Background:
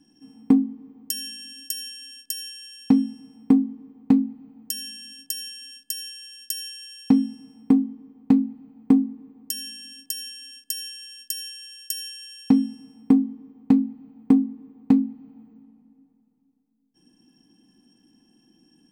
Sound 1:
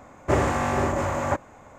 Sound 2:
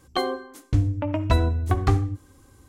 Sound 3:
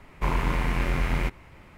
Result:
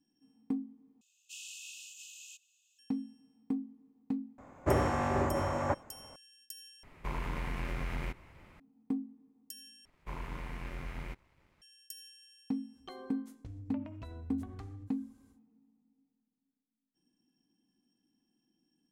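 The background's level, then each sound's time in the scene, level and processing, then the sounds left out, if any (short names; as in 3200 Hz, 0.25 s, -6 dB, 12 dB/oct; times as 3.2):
background -18 dB
1.01 replace with 1 -5.5 dB + brick-wall FIR high-pass 2500 Hz
4.38 add 1 -6 dB + high shelf 2400 Hz -7.5 dB
6.83 replace with 3 -7 dB + compressor 2:1, threshold -28 dBFS
9.85 replace with 3 -16 dB + crossover distortion -56 dBFS
12.72 add 2 -15 dB, fades 0.10 s + compressor 5:1, threshold -28 dBFS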